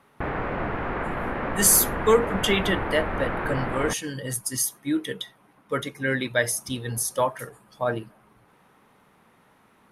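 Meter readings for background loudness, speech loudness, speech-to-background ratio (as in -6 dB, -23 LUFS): -29.5 LUFS, -24.5 LUFS, 5.0 dB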